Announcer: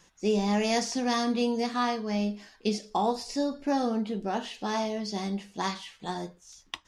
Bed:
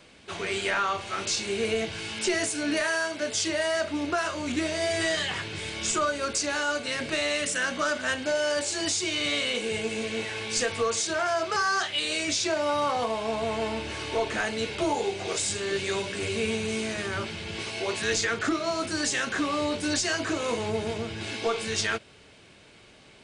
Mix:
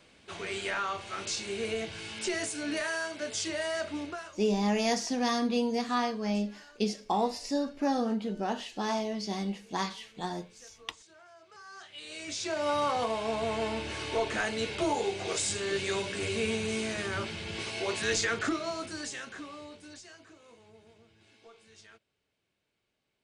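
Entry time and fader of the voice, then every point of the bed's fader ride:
4.15 s, -1.5 dB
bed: 3.99 s -6 dB
4.59 s -29 dB
11.43 s -29 dB
12.69 s -2.5 dB
18.39 s -2.5 dB
20.41 s -28 dB

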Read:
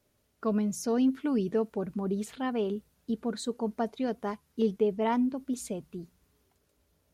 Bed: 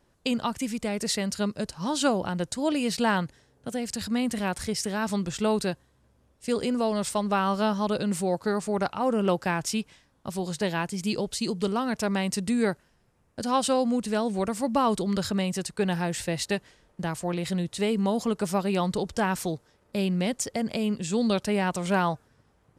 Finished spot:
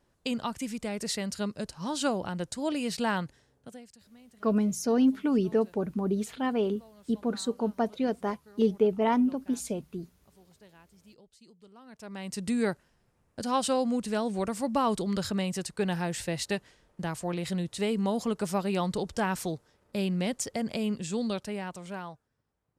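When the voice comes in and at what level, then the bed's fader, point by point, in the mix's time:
4.00 s, +2.5 dB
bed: 3.54 s -4.5 dB
4.04 s -28.5 dB
11.7 s -28.5 dB
12.48 s -3 dB
20.97 s -3 dB
22.22 s -17.5 dB

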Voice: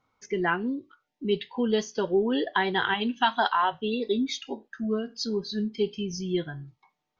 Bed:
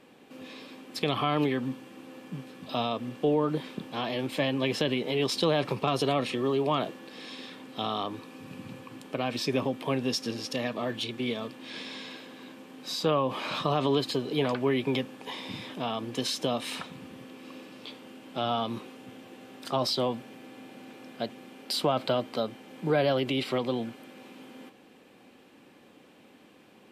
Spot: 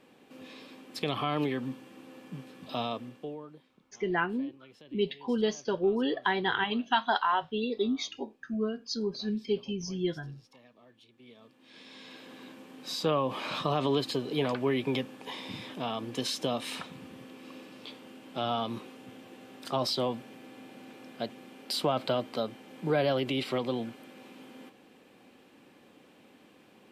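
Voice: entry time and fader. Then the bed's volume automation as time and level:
3.70 s, -3.0 dB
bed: 2.93 s -3.5 dB
3.7 s -27 dB
11.08 s -27 dB
12.32 s -2 dB

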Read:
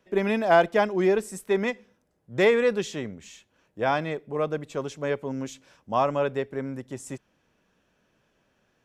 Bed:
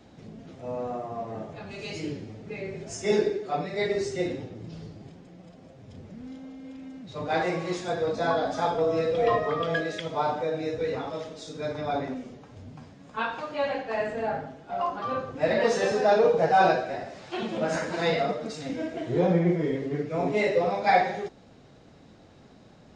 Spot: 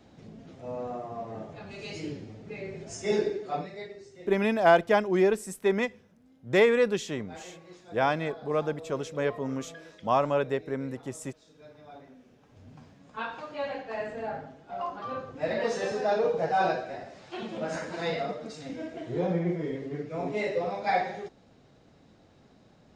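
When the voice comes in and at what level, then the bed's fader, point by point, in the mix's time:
4.15 s, -1.0 dB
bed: 3.58 s -3 dB
3.97 s -19.5 dB
12.13 s -19.5 dB
12.72 s -5.5 dB

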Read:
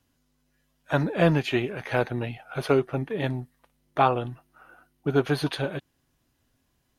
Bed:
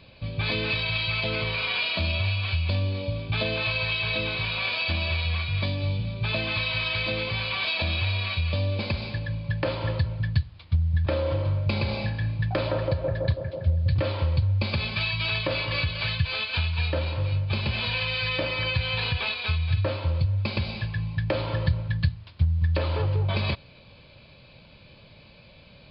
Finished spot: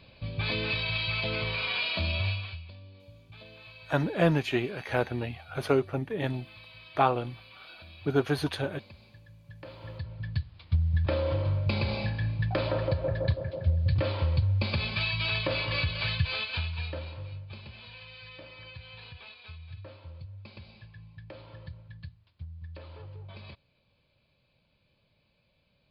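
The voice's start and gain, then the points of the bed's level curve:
3.00 s, -3.0 dB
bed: 2.3 s -3.5 dB
2.74 s -23 dB
9.37 s -23 dB
10.67 s -2.5 dB
16.31 s -2.5 dB
17.78 s -20 dB

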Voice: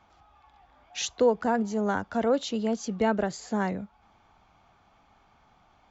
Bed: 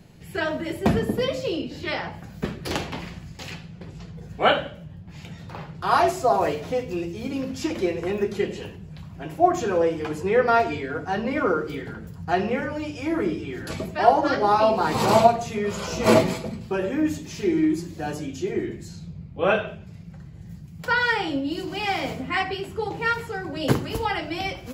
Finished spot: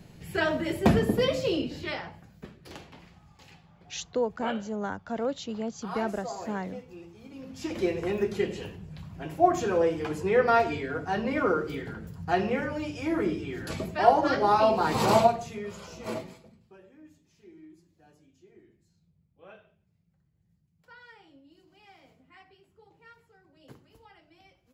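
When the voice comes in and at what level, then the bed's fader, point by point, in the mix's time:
2.95 s, -5.5 dB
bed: 1.65 s -0.5 dB
2.49 s -17.5 dB
7.31 s -17.5 dB
7.82 s -3 dB
15.11 s -3 dB
16.92 s -30 dB

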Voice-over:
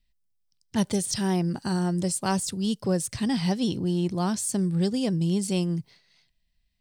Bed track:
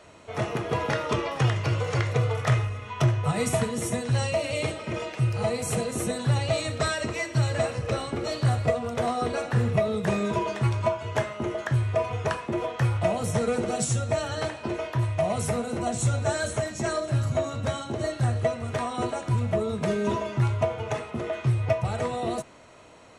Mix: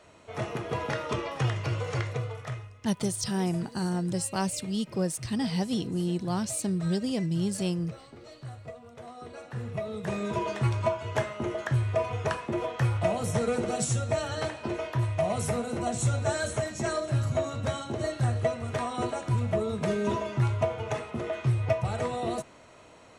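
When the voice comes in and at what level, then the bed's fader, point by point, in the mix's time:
2.10 s, -3.5 dB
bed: 1.98 s -4.5 dB
2.79 s -18.5 dB
9.05 s -18.5 dB
10.5 s -2 dB

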